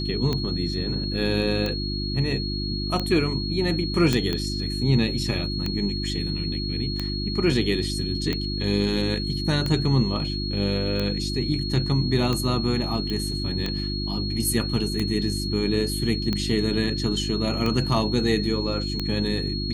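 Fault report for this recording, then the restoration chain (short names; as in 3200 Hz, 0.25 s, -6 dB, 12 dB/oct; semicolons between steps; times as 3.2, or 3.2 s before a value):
hum 50 Hz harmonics 7 -29 dBFS
tick 45 rpm -13 dBFS
tone 4300 Hz -31 dBFS
4.13 pop -8 dBFS
13.1 pop -18 dBFS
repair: de-click; notch 4300 Hz, Q 30; de-hum 50 Hz, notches 7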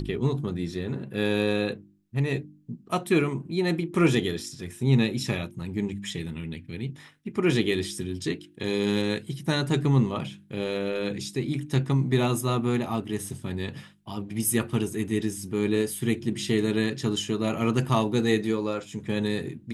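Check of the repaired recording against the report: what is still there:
none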